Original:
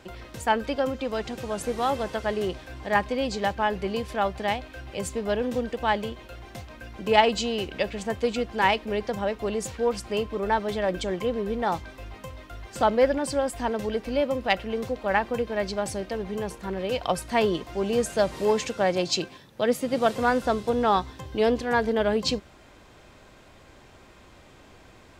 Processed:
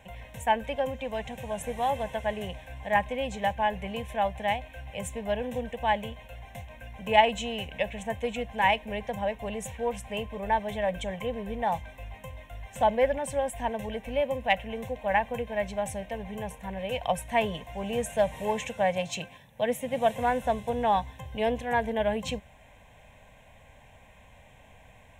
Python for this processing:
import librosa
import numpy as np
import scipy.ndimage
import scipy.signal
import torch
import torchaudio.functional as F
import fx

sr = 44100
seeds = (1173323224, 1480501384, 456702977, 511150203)

y = fx.fixed_phaser(x, sr, hz=1300.0, stages=6)